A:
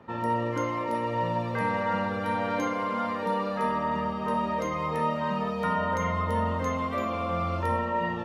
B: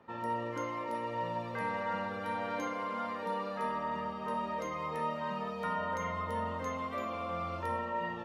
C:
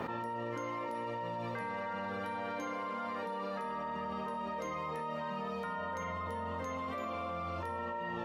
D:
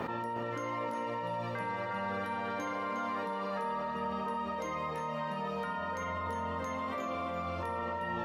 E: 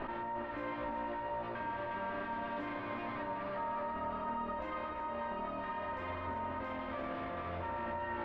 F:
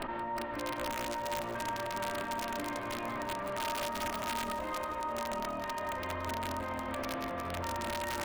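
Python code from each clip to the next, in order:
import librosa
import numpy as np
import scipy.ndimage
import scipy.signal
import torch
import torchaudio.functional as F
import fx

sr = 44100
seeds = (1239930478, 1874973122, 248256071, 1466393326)

y1 = fx.low_shelf(x, sr, hz=240.0, db=-7.0)
y1 = y1 * 10.0 ** (-6.5 / 20.0)
y2 = fx.env_flatten(y1, sr, amount_pct=100)
y2 = y2 * 10.0 ** (-6.5 / 20.0)
y3 = y2 + 10.0 ** (-8.0 / 20.0) * np.pad(y2, (int(359 * sr / 1000.0), 0))[:len(y2)]
y3 = y3 * 10.0 ** (2.0 / 20.0)
y4 = fx.lower_of_two(y3, sr, delay_ms=3.2)
y4 = fx.air_absorb(y4, sr, metres=430.0)
y5 = (np.mod(10.0 ** (31.0 / 20.0) * y4 + 1.0, 2.0) - 1.0) / 10.0 ** (31.0 / 20.0)
y5 = fx.echo_crushed(y5, sr, ms=172, feedback_pct=55, bits=12, wet_db=-13)
y5 = y5 * 10.0 ** (2.5 / 20.0)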